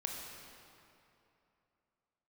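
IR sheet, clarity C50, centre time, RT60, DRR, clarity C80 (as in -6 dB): 1.5 dB, 105 ms, 2.9 s, 0.0 dB, 2.5 dB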